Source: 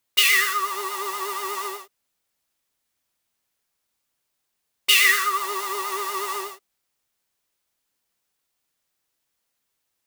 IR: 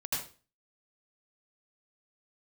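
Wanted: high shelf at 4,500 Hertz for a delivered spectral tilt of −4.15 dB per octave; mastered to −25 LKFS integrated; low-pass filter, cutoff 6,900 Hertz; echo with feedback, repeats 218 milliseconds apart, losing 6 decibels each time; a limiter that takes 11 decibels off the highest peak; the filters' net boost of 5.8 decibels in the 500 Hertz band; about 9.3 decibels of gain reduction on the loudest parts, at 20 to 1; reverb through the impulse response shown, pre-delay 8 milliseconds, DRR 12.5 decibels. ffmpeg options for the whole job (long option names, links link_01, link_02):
-filter_complex "[0:a]lowpass=6900,equalizer=frequency=500:width_type=o:gain=8.5,highshelf=frequency=4500:gain=-3.5,acompressor=threshold=-23dB:ratio=20,alimiter=limit=-23dB:level=0:latency=1,aecho=1:1:218|436|654|872|1090|1308:0.501|0.251|0.125|0.0626|0.0313|0.0157,asplit=2[link_01][link_02];[1:a]atrim=start_sample=2205,adelay=8[link_03];[link_02][link_03]afir=irnorm=-1:irlink=0,volume=-17dB[link_04];[link_01][link_04]amix=inputs=2:normalize=0,volume=5dB"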